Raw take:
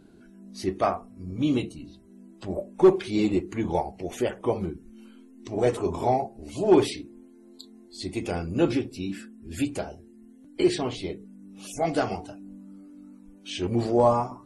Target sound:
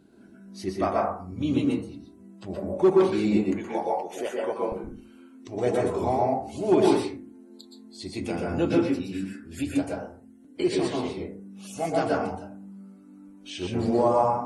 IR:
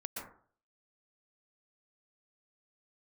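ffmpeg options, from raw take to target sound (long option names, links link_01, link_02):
-filter_complex "[0:a]asetnsamples=nb_out_samples=441:pad=0,asendcmd='3.38 highpass f 380;4.72 highpass f 74',highpass=59[link_01];[1:a]atrim=start_sample=2205,afade=type=out:start_time=0.41:duration=0.01,atrim=end_sample=18522[link_02];[link_01][link_02]afir=irnorm=-1:irlink=0,volume=1dB"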